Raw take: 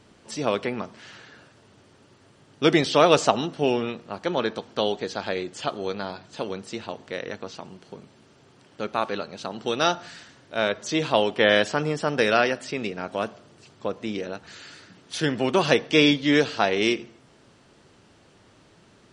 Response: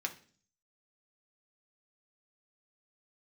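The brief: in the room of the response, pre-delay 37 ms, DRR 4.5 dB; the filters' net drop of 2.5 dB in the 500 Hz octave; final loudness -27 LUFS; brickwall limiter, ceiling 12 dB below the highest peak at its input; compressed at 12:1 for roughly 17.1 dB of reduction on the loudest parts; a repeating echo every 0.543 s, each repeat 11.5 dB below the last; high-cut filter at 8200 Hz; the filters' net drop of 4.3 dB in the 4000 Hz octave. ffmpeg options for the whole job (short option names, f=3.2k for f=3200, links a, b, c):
-filter_complex "[0:a]lowpass=8.2k,equalizer=f=500:t=o:g=-3,equalizer=f=4k:t=o:g=-5.5,acompressor=threshold=-32dB:ratio=12,alimiter=level_in=5.5dB:limit=-24dB:level=0:latency=1,volume=-5.5dB,aecho=1:1:543|1086|1629:0.266|0.0718|0.0194,asplit=2[a][b];[1:a]atrim=start_sample=2205,adelay=37[c];[b][c]afir=irnorm=-1:irlink=0,volume=-6.5dB[d];[a][d]amix=inputs=2:normalize=0,volume=14.5dB"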